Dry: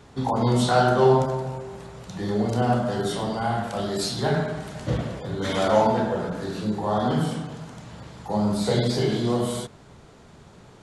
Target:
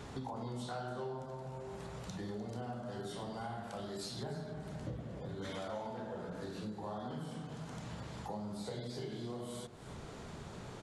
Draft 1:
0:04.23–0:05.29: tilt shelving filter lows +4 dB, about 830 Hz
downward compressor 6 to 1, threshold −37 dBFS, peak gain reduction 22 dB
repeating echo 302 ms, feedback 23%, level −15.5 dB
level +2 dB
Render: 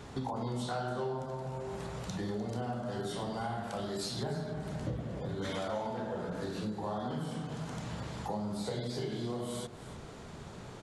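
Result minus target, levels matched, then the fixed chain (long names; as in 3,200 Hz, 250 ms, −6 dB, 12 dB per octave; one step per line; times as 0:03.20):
downward compressor: peak gain reduction −6 dB
0:04.23–0:05.29: tilt shelving filter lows +4 dB, about 830 Hz
downward compressor 6 to 1, threshold −44 dBFS, peak gain reduction 27.5 dB
repeating echo 302 ms, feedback 23%, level −15.5 dB
level +2 dB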